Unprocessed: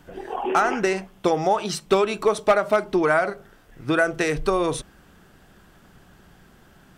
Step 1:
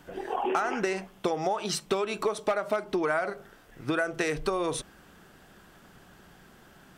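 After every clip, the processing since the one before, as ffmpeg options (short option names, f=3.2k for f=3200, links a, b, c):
-af "acompressor=threshold=-24dB:ratio=5,lowshelf=f=150:g=-7.5"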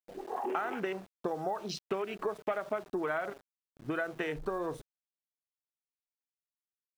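-af "afwtdn=0.0158,aeval=exprs='val(0)*gte(abs(val(0)),0.00562)':c=same,volume=-6dB"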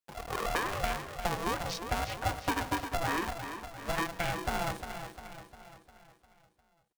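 -filter_complex "[0:a]asplit=2[a][b];[b]aecho=0:1:352|704|1056|1408|1760|2112:0.355|0.185|0.0959|0.0499|0.0259|0.0135[c];[a][c]amix=inputs=2:normalize=0,aeval=exprs='val(0)*sgn(sin(2*PI*340*n/s))':c=same,volume=1.5dB"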